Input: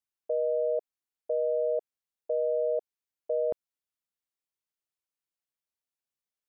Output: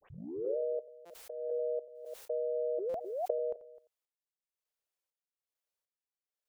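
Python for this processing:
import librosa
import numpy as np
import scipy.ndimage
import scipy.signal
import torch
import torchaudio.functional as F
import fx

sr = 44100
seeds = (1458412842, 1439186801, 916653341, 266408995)

p1 = fx.tape_start_head(x, sr, length_s=0.57)
p2 = fx.step_gate(p1, sr, bpm=100, pattern='.xx....xxx..', floor_db=-12.0, edge_ms=4.5)
p3 = p2 + 10.0 ** (-15.5 / 20.0) * np.pad(p2, (int(88 * sr / 1000.0), 0))[:len(p2)]
p4 = fx.over_compress(p3, sr, threshold_db=-35.0, ratio=-0.5)
p5 = fx.spec_paint(p4, sr, seeds[0], shape='rise', start_s=2.78, length_s=0.22, low_hz=340.0, high_hz=770.0, level_db=-37.0)
p6 = fx.graphic_eq_10(p5, sr, hz=(125, 250, 500), db=(-9, -12, 9))
p7 = p6 + fx.echo_single(p6, sr, ms=258, db=-19.0, dry=0)
p8 = fx.dynamic_eq(p7, sr, hz=190.0, q=1.3, threshold_db=-51.0, ratio=4.0, max_db=7)
p9 = fx.buffer_glitch(p8, sr, at_s=(1.05, 2.89), block=256, repeats=8)
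p10 = fx.pre_swell(p9, sr, db_per_s=46.0)
y = p10 * librosa.db_to_amplitude(-4.0)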